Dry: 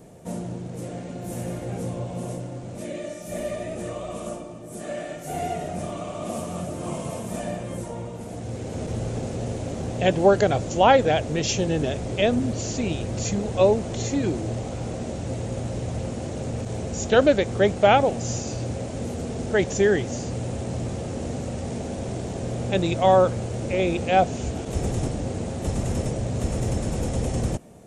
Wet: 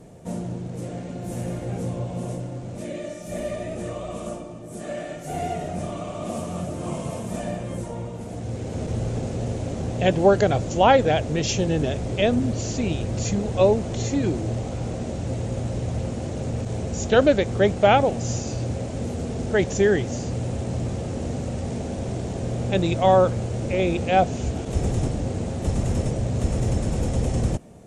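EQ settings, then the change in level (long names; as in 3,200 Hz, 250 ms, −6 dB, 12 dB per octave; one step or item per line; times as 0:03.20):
high-frequency loss of the air 56 metres
low-shelf EQ 170 Hz +4 dB
high-shelf EQ 9,100 Hz +10.5 dB
0.0 dB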